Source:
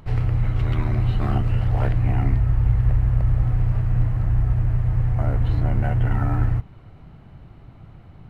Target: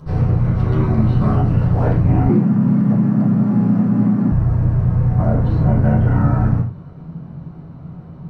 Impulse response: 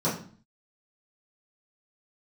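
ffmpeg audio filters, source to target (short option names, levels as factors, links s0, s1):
-filter_complex "[1:a]atrim=start_sample=2205,afade=t=out:st=0.19:d=0.01,atrim=end_sample=8820[s0];[0:a][s0]afir=irnorm=-1:irlink=0,asettb=1/sr,asplit=3[s1][s2][s3];[s1]atrim=end=2.294[s4];[s2]atrim=start=2.29:end=4.32,asetpts=PTS-STARTPTS,afade=t=in:d=0.004:c=qsin,afade=t=out:st=2.026:d=0.004:c=qsin,afreqshift=87[s5];[s3]atrim=start=4.316[s6];[s4][s5]acrossfade=d=0.004:c1=hsin:c2=qsin[s7];[s7][s6]acrossfade=d=0.004:c1=qsin:c2=hsin,volume=0.473"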